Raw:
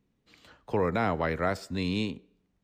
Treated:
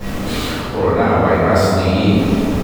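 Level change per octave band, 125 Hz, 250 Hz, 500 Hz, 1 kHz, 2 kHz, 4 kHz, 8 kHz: +17.5, +16.5, +15.5, +14.5, +12.5, +15.5, +20.5 decibels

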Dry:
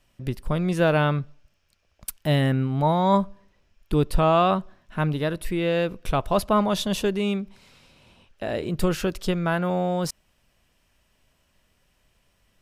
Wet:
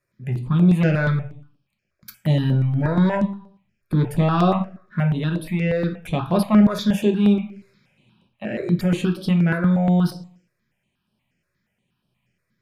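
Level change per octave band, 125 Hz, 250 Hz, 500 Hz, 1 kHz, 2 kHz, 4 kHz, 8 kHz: +6.5 dB, +7.0 dB, −1.5 dB, −3.5 dB, +1.0 dB, −2.5 dB, can't be measured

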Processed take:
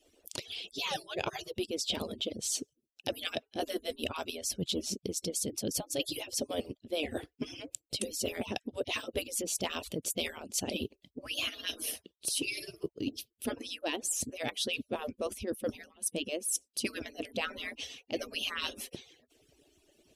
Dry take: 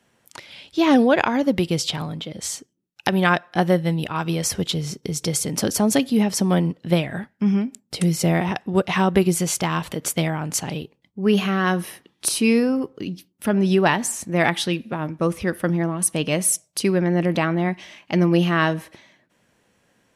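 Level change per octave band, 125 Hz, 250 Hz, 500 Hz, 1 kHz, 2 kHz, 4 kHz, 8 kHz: −24.5, −19.5, −14.5, −18.0, −14.0, −6.0, −9.0 decibels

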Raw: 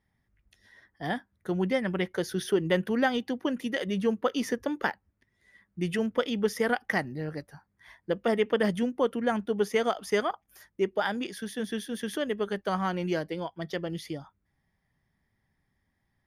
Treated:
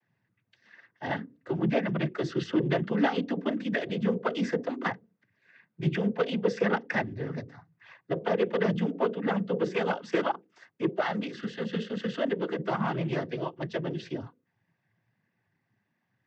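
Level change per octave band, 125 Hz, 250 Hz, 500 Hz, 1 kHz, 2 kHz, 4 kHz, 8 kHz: +4.0 dB, +0.5 dB, −1.0 dB, −0.5 dB, −1.5 dB, −3.0 dB, below −10 dB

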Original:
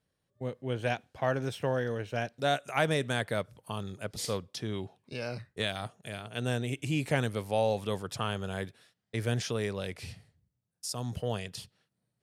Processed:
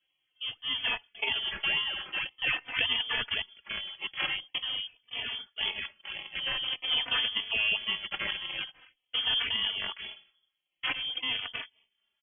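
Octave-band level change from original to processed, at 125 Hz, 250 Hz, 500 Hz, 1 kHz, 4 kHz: −21.0, −16.0, −17.0, −6.0, +13.0 decibels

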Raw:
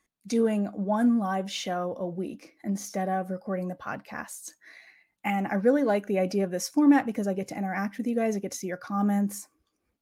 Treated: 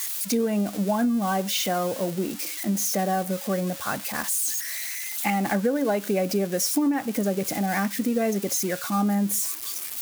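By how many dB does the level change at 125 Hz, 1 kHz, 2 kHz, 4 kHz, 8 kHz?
+3.5, +3.0, +4.0, +9.0, +13.0 decibels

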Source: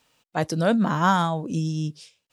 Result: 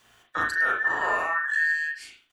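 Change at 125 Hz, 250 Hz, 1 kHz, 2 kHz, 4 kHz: below −25 dB, −23.0 dB, −4.0 dB, +10.5 dB, −7.0 dB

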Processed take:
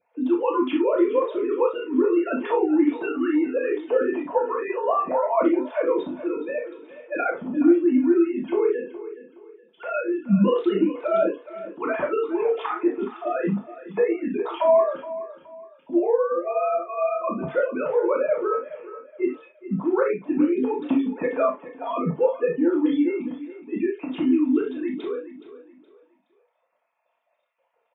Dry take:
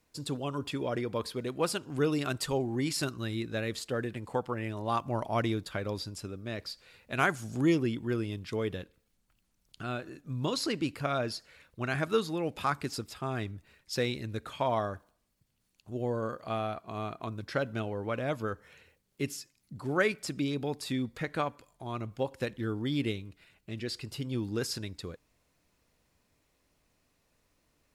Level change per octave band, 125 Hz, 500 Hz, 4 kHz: −2.0 dB, +12.5 dB, can't be measured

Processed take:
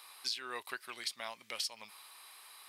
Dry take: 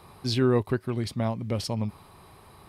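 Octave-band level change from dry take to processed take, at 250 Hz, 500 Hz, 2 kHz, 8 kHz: −31.5, −22.5, −3.0, −0.5 decibels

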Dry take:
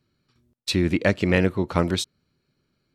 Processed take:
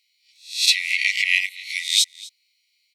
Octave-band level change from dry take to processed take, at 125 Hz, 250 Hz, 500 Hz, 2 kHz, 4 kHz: below −40 dB, below −40 dB, below −40 dB, +8.5 dB, +12.0 dB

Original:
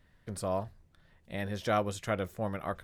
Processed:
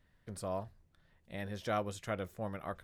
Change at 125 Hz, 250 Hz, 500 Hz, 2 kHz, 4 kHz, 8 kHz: −5.5, −5.5, −5.5, −5.5, −5.5, −5.5 decibels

